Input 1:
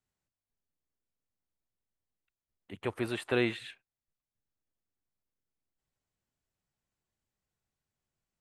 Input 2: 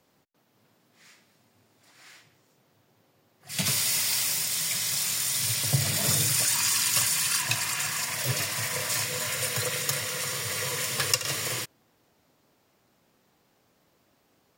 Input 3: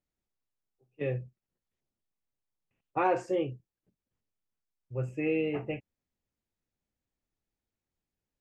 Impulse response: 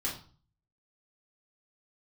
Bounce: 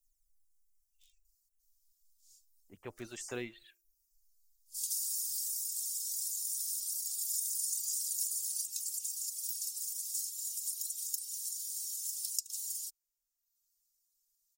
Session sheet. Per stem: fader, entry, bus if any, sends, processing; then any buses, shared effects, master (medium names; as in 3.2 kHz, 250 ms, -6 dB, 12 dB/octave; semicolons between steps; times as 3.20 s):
-11.0 dB, 0.00 s, no bus, no send, level-controlled noise filter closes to 530 Hz, open at -35 dBFS; de-hum 86.72 Hz, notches 9
0.0 dB, 1.25 s, bus A, no send, none
-16.0 dB, 0.00 s, bus A, no send, phaser 0.24 Hz, delay 4.7 ms, feedback 49%; spectrum-flattening compressor 10:1
bus A: 0.0 dB, inverse Chebyshev band-stop 110–1500 Hz, stop band 70 dB; compression 2:1, threshold -35 dBFS, peak gain reduction 8 dB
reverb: none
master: reverb removal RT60 0.95 s